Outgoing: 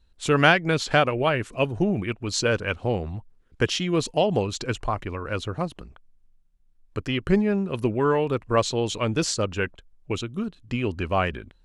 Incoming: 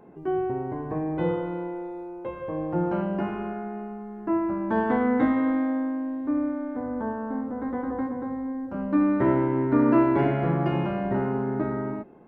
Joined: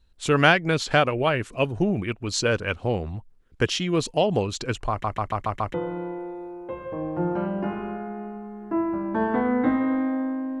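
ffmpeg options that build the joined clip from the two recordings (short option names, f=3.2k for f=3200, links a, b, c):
-filter_complex "[0:a]apad=whole_dur=10.6,atrim=end=10.6,asplit=6[a][b][c][d][e][f];[a]atrim=end=5.042[g];[b]atrim=start=4.898:end=5.042[h];[c]atrim=start=4.898:end=5.042[i];[d]atrim=start=4.898:end=5.042[j];[e]atrim=start=4.898:end=5.042[k];[f]atrim=start=4.898:end=5.042[l];[1:a]atrim=start=1.298:end=6.16[m];[g][h]acrossfade=d=0.004:c1=hsin:c2=hsin[n];[n][i]acrossfade=d=0.004:c1=hsin:c2=hsin[o];[o][j]acrossfade=d=0.004:c1=hsin:c2=hsin[p];[p][k]acrossfade=d=0.004:c1=hsin:c2=hsin[q];[q][l]acrossfade=d=0.004:c1=hsin:c2=hsin[r];[r][m]acrossfade=d=0.004:c1=hsin:c2=hsin"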